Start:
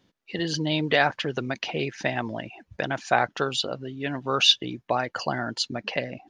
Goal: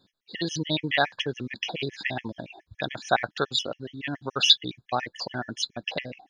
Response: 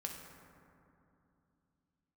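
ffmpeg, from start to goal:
-filter_complex "[0:a]asettb=1/sr,asplit=3[s0][s1][s2];[s0]atrim=end=0.644[s3];[s1]atrim=start=0.64:end=1.15,asetpts=PTS-STARTPTS,afade=t=in:d=0.004:c=qsin,afade=t=out:st=0.506:d=0.004:c=qsin,acrossover=split=3800[s4][s5];[s5]acompressor=threshold=0.00398:ratio=4:attack=1:release=60[s6];[s4][s6]amix=inputs=2:normalize=0[s7];[s2]atrim=start=1.146[s8];[s3][s7]acrossfade=d=0.004:c1=hsin:c2=qsin[s9];[s9][s8]acrossfade=d=0.004:c1=qsin:c2=hsin,equalizer=f=4000:w=3.8:g=12,afftfilt=real='re*gt(sin(2*PI*7.1*pts/sr)*(1-2*mod(floor(b*sr/1024/1700),2)),0)':imag='im*gt(sin(2*PI*7.1*pts/sr)*(1-2*mod(floor(b*sr/1024/1700),2)),0)':win_size=1024:overlap=0.75"

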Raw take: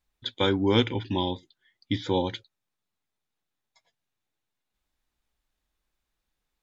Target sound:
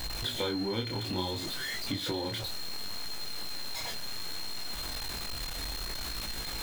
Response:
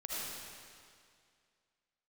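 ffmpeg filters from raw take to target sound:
-af "aeval=exprs='val(0)+0.5*0.0398*sgn(val(0))':c=same,acompressor=threshold=0.0447:ratio=6,aeval=exprs='val(0)+0.0158*sin(2*PI*4200*n/s)':c=same,flanger=delay=18:depth=7.9:speed=0.63"

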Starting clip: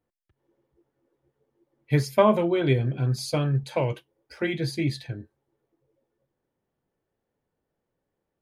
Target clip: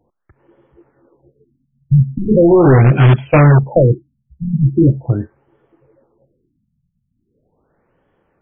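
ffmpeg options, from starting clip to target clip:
-filter_complex "[0:a]equalizer=f=1300:t=o:w=0.94:g=5,apsyclip=6.68,asplit=2[s0][s1];[s1]aeval=exprs='(mod(1.68*val(0)+1,2)-1)/1.68':c=same,volume=0.531[s2];[s0][s2]amix=inputs=2:normalize=0,afftfilt=real='re*lt(b*sr/1024,210*pow(3500/210,0.5+0.5*sin(2*PI*0.4*pts/sr)))':imag='im*lt(b*sr/1024,210*pow(3500/210,0.5+0.5*sin(2*PI*0.4*pts/sr)))':win_size=1024:overlap=0.75,volume=0.841"

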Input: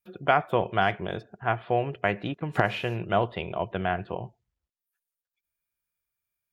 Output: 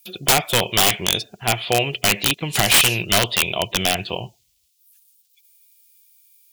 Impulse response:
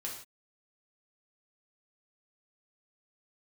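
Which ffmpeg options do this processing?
-af "aexciter=amount=12:drive=5.7:freq=2400,aeval=exprs='(mod(3.98*val(0)+1,2)-1)/3.98':c=same,volume=1.78"

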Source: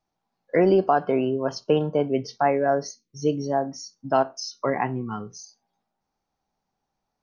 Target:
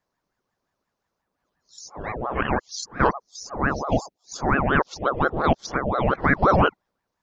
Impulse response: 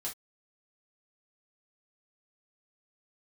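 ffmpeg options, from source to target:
-af "areverse,aeval=exprs='val(0)*sin(2*PI*580*n/s+580*0.7/5.7*sin(2*PI*5.7*n/s))':c=same,volume=1.5"

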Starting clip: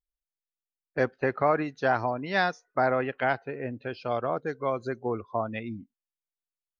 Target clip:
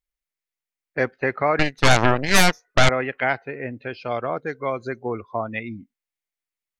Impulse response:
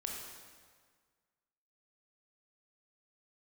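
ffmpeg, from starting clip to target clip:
-filter_complex "[0:a]equalizer=f=2100:t=o:w=0.52:g=8.5,asettb=1/sr,asplit=3[s0][s1][s2];[s0]atrim=end=1.594[s3];[s1]atrim=start=1.59:end=2.89,asetpts=PTS-STARTPTS,afade=t=in:d=0.004:c=qsin,afade=t=out:st=1.296:d=0.004:c=qsin,aeval=exprs='0.335*(cos(1*acos(clip(val(0)/0.335,-1,1)))-cos(1*PI/2))+0.168*(cos(8*acos(clip(val(0)/0.335,-1,1)))-cos(8*PI/2))':c=same[s4];[s2]atrim=start=2.886[s5];[s3][s4]acrossfade=d=0.004:c1=hsin:c2=qsin[s6];[s6][s5]acrossfade=d=0.004:c1=qsin:c2=hsin,volume=1.33"

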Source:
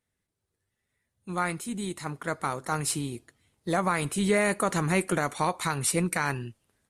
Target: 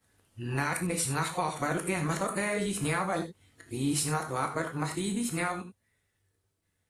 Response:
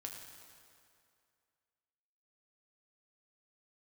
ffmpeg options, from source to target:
-filter_complex "[0:a]areverse,acompressor=threshold=0.0316:ratio=6[s0];[1:a]atrim=start_sample=2205,atrim=end_sample=4410[s1];[s0][s1]afir=irnorm=-1:irlink=0,volume=2.51"

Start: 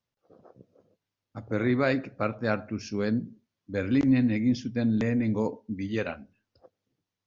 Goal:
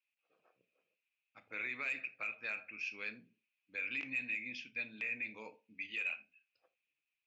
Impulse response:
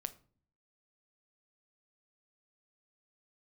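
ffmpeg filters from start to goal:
-filter_complex "[0:a]bandpass=f=2500:t=q:w=14:csg=0,asoftclip=type=tanh:threshold=0.0251,alimiter=level_in=10.6:limit=0.0631:level=0:latency=1:release=26,volume=0.0944[s0];[1:a]atrim=start_sample=2205,atrim=end_sample=3969[s1];[s0][s1]afir=irnorm=-1:irlink=0,volume=6.68"

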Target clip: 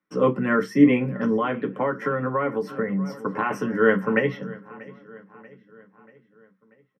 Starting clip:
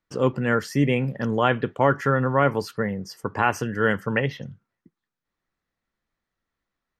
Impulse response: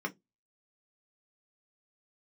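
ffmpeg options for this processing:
-filter_complex "[0:a]asplit=2[s0][s1];[s1]adelay=637,lowpass=f=4500:p=1,volume=0.0944,asplit=2[s2][s3];[s3]adelay=637,lowpass=f=4500:p=1,volume=0.54,asplit=2[s4][s5];[s5]adelay=637,lowpass=f=4500:p=1,volume=0.54,asplit=2[s6][s7];[s7]adelay=637,lowpass=f=4500:p=1,volume=0.54[s8];[s0][s2][s4][s6][s8]amix=inputs=5:normalize=0[s9];[1:a]atrim=start_sample=2205[s10];[s9][s10]afir=irnorm=-1:irlink=0,asettb=1/sr,asplit=3[s11][s12][s13];[s11]atrim=end=1.364[s14];[s12]atrim=start=1.36:end=3.51,asetpts=PTS-STARTPTS,afade=t=in:d=0.004:c=qsin,afade=t=out:st=2.146:d=0.004:c=qsin,acompressor=threshold=0.112:ratio=4[s15];[s13]atrim=start=3.506[s16];[s14][s15]acrossfade=d=0.004:c1=hsin:c2=qsin[s17];[s17][s16]acrossfade=d=0.004:c1=qsin:c2=hsin,volume=0.708"

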